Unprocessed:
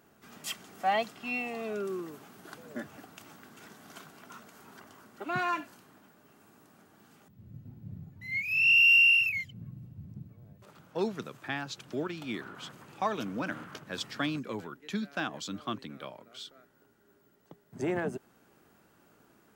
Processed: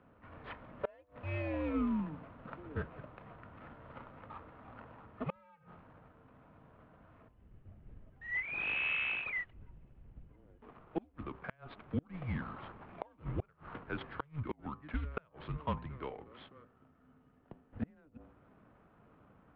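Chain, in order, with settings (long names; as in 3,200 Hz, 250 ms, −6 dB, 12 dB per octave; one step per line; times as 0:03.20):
running median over 15 samples
hum removal 107.5 Hz, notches 13
single-sideband voice off tune −150 Hz 220–3,200 Hz
gate with flip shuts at −26 dBFS, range −33 dB
level +2.5 dB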